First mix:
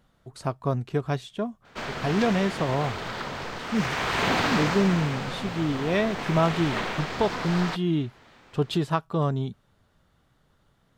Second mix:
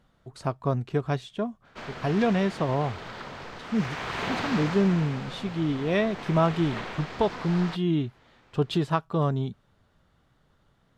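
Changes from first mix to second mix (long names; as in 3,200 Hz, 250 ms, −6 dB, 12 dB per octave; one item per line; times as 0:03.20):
background −6.0 dB
master: add high-shelf EQ 8,500 Hz −8.5 dB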